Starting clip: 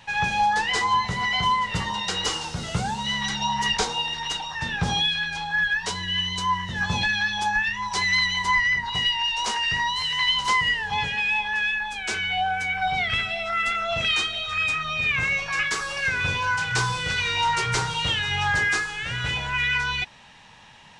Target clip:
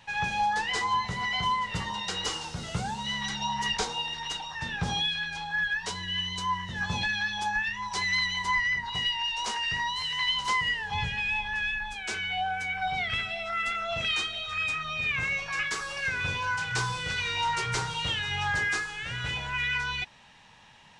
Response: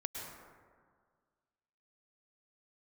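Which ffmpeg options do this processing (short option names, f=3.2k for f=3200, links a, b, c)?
-filter_complex "[0:a]asplit=3[a][b][c];[a]afade=t=out:st=10.93:d=0.02[d];[b]asubboost=boost=3.5:cutoff=160,afade=t=in:st=10.93:d=0.02,afade=t=out:st=11.93:d=0.02[e];[c]afade=t=in:st=11.93:d=0.02[f];[d][e][f]amix=inputs=3:normalize=0,volume=-5.5dB"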